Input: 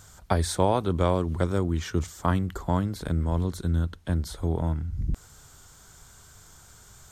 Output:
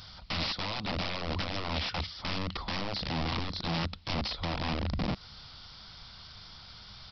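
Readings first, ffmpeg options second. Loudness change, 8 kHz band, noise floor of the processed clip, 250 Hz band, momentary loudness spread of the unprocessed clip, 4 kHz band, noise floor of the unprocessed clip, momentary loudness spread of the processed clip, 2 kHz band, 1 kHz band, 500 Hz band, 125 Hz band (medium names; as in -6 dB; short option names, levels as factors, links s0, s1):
-6.0 dB, -15.0 dB, -50 dBFS, -8.0 dB, 6 LU, +8.0 dB, -52 dBFS, 15 LU, +3.5 dB, -5.5 dB, -11.0 dB, -10.0 dB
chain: -af "crystalizer=i=7:c=0,acompressor=threshold=0.0447:ratio=2,aresample=11025,aeval=exprs='(mod(21.1*val(0)+1,2)-1)/21.1':c=same,aresample=44100,equalizer=f=200:t=o:w=0.33:g=5,equalizer=f=400:t=o:w=0.33:g=-9,equalizer=f=1600:t=o:w=0.33:g=-7"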